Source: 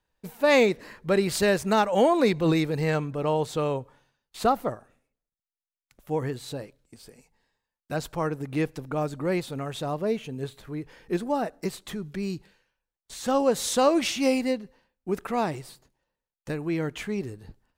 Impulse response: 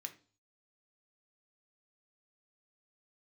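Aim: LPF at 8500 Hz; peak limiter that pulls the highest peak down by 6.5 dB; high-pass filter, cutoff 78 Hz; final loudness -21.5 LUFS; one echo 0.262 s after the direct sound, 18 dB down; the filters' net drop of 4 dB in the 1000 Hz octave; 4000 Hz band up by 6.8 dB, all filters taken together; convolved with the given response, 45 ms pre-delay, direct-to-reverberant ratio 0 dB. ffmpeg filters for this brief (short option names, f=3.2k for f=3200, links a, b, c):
-filter_complex "[0:a]highpass=78,lowpass=8.5k,equalizer=f=1k:t=o:g=-6,equalizer=f=4k:t=o:g=8.5,alimiter=limit=-15.5dB:level=0:latency=1,aecho=1:1:262:0.126,asplit=2[a][b];[1:a]atrim=start_sample=2205,adelay=45[c];[b][c]afir=irnorm=-1:irlink=0,volume=3.5dB[d];[a][d]amix=inputs=2:normalize=0,volume=5dB"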